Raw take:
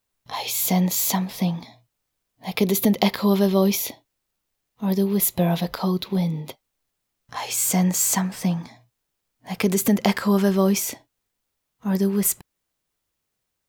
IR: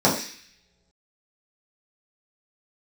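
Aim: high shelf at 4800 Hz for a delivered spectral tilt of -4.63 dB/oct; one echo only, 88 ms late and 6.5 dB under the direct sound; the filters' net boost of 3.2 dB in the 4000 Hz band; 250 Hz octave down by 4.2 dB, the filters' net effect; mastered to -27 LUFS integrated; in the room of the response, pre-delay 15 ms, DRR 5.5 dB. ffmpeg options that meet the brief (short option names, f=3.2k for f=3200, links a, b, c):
-filter_complex "[0:a]equalizer=f=250:t=o:g=-6.5,equalizer=f=4k:t=o:g=7,highshelf=f=4.8k:g=-6,aecho=1:1:88:0.473,asplit=2[a][b];[1:a]atrim=start_sample=2205,adelay=15[c];[b][c]afir=irnorm=-1:irlink=0,volume=-25dB[d];[a][d]amix=inputs=2:normalize=0,volume=-6dB"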